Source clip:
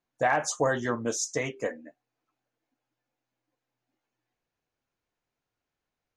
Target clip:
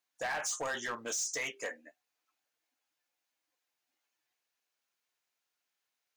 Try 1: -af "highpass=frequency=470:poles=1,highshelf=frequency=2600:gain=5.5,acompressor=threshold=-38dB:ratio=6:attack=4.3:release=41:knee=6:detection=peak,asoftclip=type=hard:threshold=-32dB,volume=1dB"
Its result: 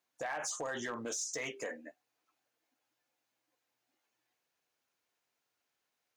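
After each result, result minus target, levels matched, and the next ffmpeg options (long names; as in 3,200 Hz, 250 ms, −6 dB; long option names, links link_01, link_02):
downward compressor: peak gain reduction +7.5 dB; 500 Hz band +3.0 dB
-af "highpass=frequency=470:poles=1,highshelf=frequency=2600:gain=5.5,acompressor=threshold=-31dB:ratio=6:attack=4.3:release=41:knee=6:detection=peak,asoftclip=type=hard:threshold=-32dB,volume=1dB"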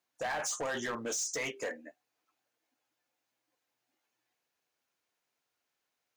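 500 Hz band +3.0 dB
-af "highpass=frequency=1500:poles=1,highshelf=frequency=2600:gain=5.5,acompressor=threshold=-31dB:ratio=6:attack=4.3:release=41:knee=6:detection=peak,asoftclip=type=hard:threshold=-32dB,volume=1dB"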